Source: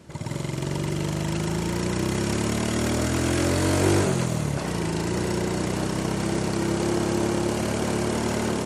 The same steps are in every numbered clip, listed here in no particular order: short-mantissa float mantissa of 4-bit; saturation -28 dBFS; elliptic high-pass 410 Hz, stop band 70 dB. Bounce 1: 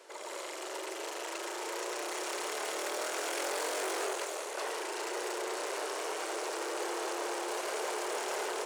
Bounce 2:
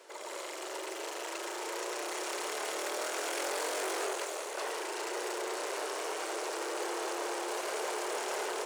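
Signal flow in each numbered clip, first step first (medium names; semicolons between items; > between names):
saturation > elliptic high-pass > short-mantissa float; saturation > short-mantissa float > elliptic high-pass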